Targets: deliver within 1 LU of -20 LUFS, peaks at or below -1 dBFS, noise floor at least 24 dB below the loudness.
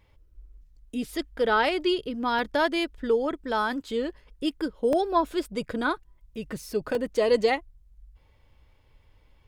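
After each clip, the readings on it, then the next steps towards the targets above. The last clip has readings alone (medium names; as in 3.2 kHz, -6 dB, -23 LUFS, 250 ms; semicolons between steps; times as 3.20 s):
dropouts 3; longest dropout 1.2 ms; loudness -27.0 LUFS; peak level -11.5 dBFS; loudness target -20.0 LUFS
-> interpolate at 2.39/4.93/6.95 s, 1.2 ms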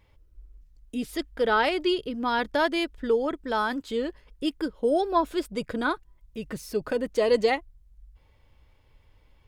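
dropouts 0; loudness -27.0 LUFS; peak level -11.5 dBFS; loudness target -20.0 LUFS
-> trim +7 dB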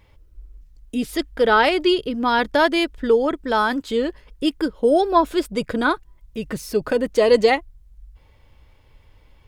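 loudness -20.0 LUFS; peak level -4.5 dBFS; noise floor -53 dBFS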